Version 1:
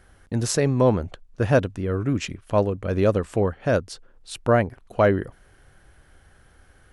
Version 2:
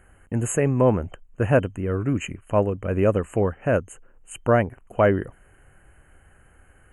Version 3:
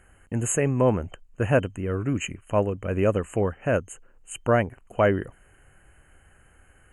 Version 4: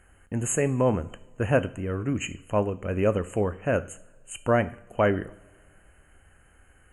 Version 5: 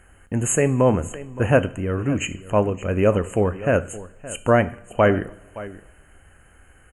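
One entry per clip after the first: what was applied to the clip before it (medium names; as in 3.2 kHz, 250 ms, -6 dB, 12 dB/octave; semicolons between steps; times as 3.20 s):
FFT band-reject 3.1–6.4 kHz
peaking EQ 5 kHz +8 dB 1.7 oct; trim -2.5 dB
two-slope reverb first 0.54 s, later 2.3 s, from -21 dB, DRR 12.5 dB; trim -1.5 dB
delay 569 ms -17 dB; trim +5.5 dB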